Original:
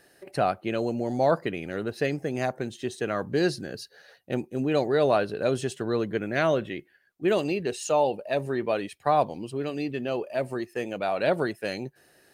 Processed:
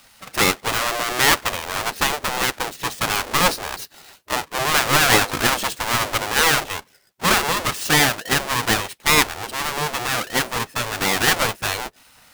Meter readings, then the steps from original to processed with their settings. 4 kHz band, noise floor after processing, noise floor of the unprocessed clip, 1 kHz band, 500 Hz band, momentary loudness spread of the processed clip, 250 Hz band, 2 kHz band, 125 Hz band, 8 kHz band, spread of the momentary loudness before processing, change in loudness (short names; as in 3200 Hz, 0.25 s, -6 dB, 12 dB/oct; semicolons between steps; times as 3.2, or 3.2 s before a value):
+19.0 dB, -54 dBFS, -62 dBFS, +8.5 dB, -2.0 dB, 10 LU, +0.5 dB, +15.0 dB, +4.5 dB, +21.5 dB, 9 LU, +8.0 dB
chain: half-waves squared off; spectral gate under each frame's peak -10 dB weak; gain +8.5 dB